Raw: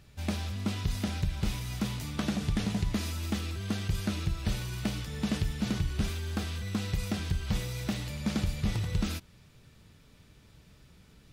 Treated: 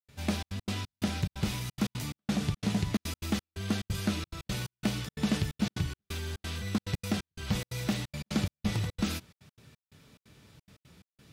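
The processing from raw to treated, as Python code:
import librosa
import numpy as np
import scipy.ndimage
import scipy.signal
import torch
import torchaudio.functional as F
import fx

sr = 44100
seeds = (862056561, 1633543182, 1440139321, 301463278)

y = scipy.signal.sosfilt(scipy.signal.butter(2, 95.0, 'highpass', fs=sr, output='sos'), x)
y = fx.step_gate(y, sr, bpm=177, pattern='.xxxx.x.xx..xxx', floor_db=-60.0, edge_ms=4.5)
y = y * librosa.db_to_amplitude(2.5)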